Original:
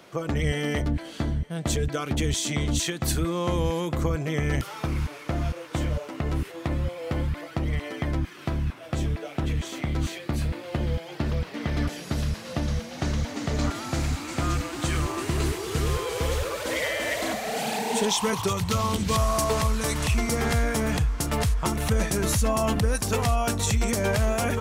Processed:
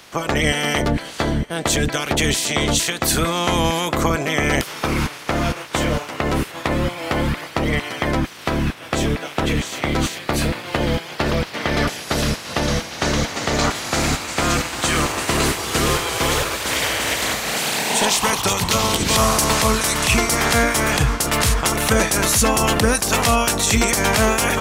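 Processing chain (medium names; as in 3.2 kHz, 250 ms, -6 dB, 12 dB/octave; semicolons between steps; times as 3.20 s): spectral peaks clipped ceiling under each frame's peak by 17 dB; trim +6.5 dB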